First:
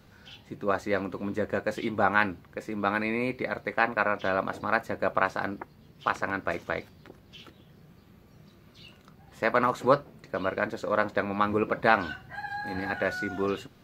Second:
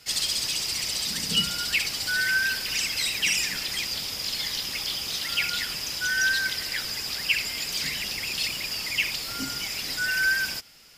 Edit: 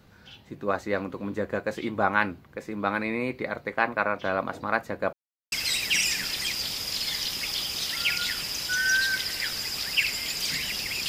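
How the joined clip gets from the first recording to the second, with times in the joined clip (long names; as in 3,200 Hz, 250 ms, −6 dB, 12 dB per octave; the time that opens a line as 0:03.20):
first
0:05.13–0:05.52: silence
0:05.52: continue with second from 0:02.84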